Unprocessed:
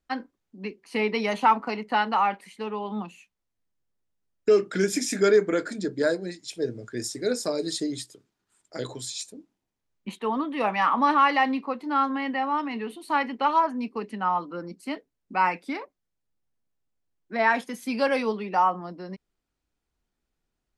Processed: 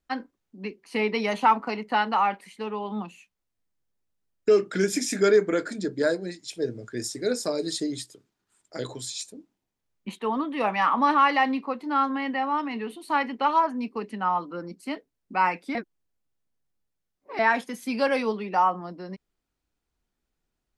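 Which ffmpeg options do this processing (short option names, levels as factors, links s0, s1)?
-filter_complex "[0:a]asplit=3[s0][s1][s2];[s0]atrim=end=15.752[s3];[s1]atrim=start=15.748:end=17.392,asetpts=PTS-STARTPTS,areverse[s4];[s2]atrim=start=17.388[s5];[s3][s4]acrossfade=d=0.004:c1=hsin:c2=hsin[s6];[s6][s5]acrossfade=d=0.004:c1=hsin:c2=hsin"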